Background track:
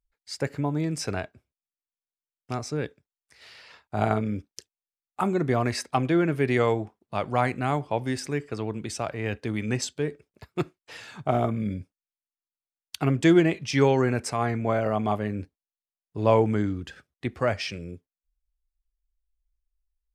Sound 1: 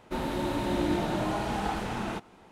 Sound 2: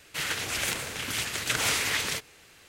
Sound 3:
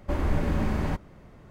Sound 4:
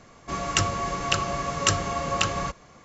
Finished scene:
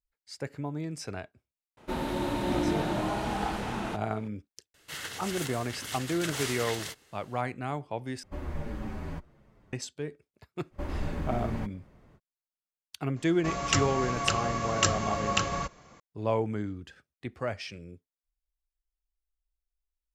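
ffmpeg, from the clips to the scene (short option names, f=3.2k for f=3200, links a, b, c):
-filter_complex "[3:a]asplit=2[a][b];[0:a]volume=-8dB[c];[2:a]bandreject=f=2.4k:w=7[d];[a]asplit=2[e][f];[f]adelay=7.5,afreqshift=-1.4[g];[e][g]amix=inputs=2:normalize=1[h];[c]asplit=2[i][j];[i]atrim=end=8.234[k];[h]atrim=end=1.5,asetpts=PTS-STARTPTS,volume=-7.5dB[l];[j]atrim=start=9.726[m];[1:a]atrim=end=2.51,asetpts=PTS-STARTPTS,volume=-0.5dB,afade=t=in:d=0.004:c=hsin,afade=t=out:st=2.506:d=0.004:c=hsin,adelay=1770[n];[d]atrim=end=2.68,asetpts=PTS-STARTPTS,volume=-7.5dB,afade=t=in:d=0.004:c=hsin,afade=t=out:st=2.676:d=0.004:c=hsin,adelay=4740[o];[b]atrim=end=1.5,asetpts=PTS-STARTPTS,volume=-7.5dB,afade=t=in:d=0.05,afade=t=out:st=1.45:d=0.05,adelay=10700[p];[4:a]atrim=end=2.84,asetpts=PTS-STARTPTS,volume=-3dB,afade=t=in:d=0.004:c=hsin,afade=t=out:st=2.836:d=0.004:c=hsin,adelay=580356S[q];[k][l]acrossfade=d=0.004:c1=hsin:c2=hsin[r];[r][m]acrossfade=d=0.004:c1=hsin:c2=hsin[s];[s][n][o][p][q]amix=inputs=5:normalize=0"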